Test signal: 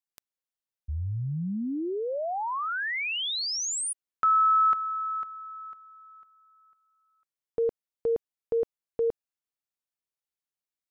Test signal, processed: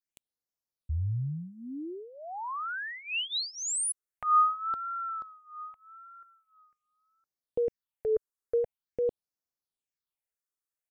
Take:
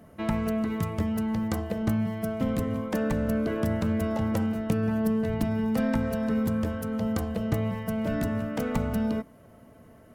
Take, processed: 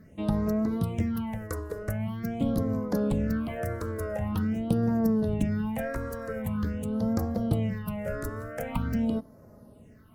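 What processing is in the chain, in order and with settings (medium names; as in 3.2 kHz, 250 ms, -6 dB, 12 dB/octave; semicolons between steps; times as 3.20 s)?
wow and flutter 0.67 Hz 89 cents; phase shifter stages 6, 0.45 Hz, lowest notch 190–3000 Hz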